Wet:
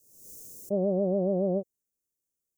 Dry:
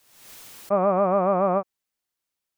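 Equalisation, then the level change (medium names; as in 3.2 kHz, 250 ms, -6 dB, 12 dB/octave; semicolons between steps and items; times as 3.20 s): elliptic band-stop 490–6400 Hz, stop band 70 dB; 0.0 dB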